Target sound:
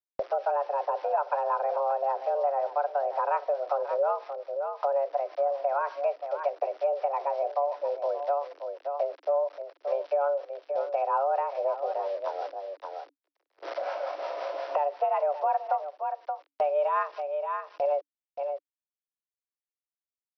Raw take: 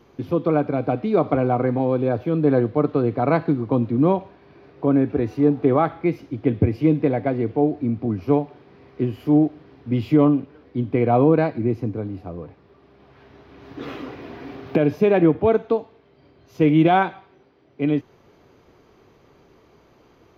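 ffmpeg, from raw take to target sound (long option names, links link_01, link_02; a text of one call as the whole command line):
ffmpeg -i in.wav -filter_complex "[0:a]highpass=290,equalizer=frequency=300:width_type=q:width=4:gain=3,equalizer=frequency=430:width_type=q:width=4:gain=5,equalizer=frequency=660:width_type=q:width=4:gain=5,equalizer=frequency=1000:width_type=q:width=4:gain=4,equalizer=frequency=1600:width_type=q:width=4:gain=-5,lowpass=frequency=2200:width=0.5412,lowpass=frequency=2200:width=1.3066,aresample=11025,aeval=exprs='val(0)*gte(abs(val(0)),0.0112)':channel_layout=same,aresample=44100,afreqshift=280,agate=range=-34dB:threshold=-46dB:ratio=16:detection=peak,acrossover=split=830[link_01][link_02];[link_01]alimiter=limit=-14dB:level=0:latency=1:release=424[link_03];[link_03][link_02]amix=inputs=2:normalize=0,equalizer=frequency=510:width=1.8:gain=7.5,aecho=1:1:576:0.2,acrossover=split=540[link_04][link_05];[link_04]aeval=exprs='val(0)*(1-0.5/2+0.5/2*cos(2*PI*5.5*n/s))':channel_layout=same[link_06];[link_05]aeval=exprs='val(0)*(1-0.5/2-0.5/2*cos(2*PI*5.5*n/s))':channel_layout=same[link_07];[link_06][link_07]amix=inputs=2:normalize=0,acompressor=threshold=-44dB:ratio=2.5,volume=9dB" out.wav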